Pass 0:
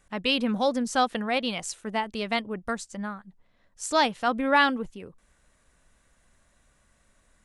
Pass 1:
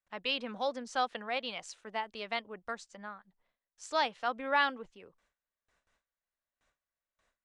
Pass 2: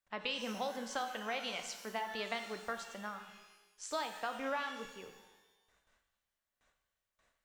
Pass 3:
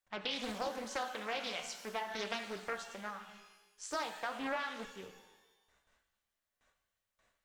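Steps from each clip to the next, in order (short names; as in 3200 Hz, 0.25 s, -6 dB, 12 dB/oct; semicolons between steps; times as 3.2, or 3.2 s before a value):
gate with hold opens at -52 dBFS; three-band isolator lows -12 dB, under 410 Hz, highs -21 dB, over 6600 Hz; gain -7 dB
compressor 10:1, threshold -36 dBFS, peak gain reduction 14 dB; shimmer reverb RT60 1.1 s, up +12 st, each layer -8 dB, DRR 6 dB; gain +1.5 dB
flange 0.42 Hz, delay 8.9 ms, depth 6.9 ms, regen +63%; Doppler distortion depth 0.47 ms; gain +4.5 dB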